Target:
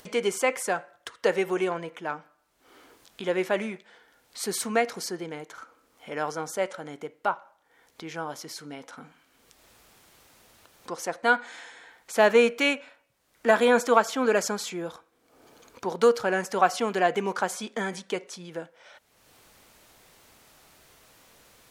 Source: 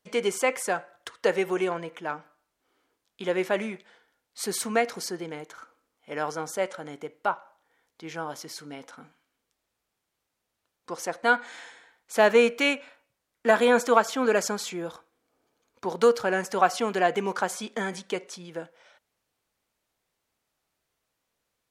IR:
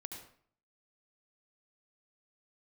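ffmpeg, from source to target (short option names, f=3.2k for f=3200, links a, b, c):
-af "acompressor=mode=upward:threshold=-37dB:ratio=2.5"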